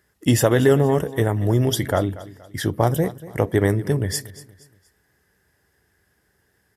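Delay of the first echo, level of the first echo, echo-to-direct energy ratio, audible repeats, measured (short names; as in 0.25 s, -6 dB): 0.236 s, -17.5 dB, -17.0 dB, 3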